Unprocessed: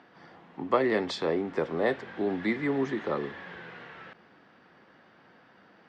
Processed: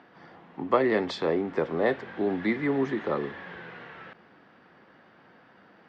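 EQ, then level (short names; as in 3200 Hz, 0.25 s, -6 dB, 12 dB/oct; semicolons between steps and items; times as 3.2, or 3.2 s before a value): high shelf 6400 Hz -11 dB; +2.0 dB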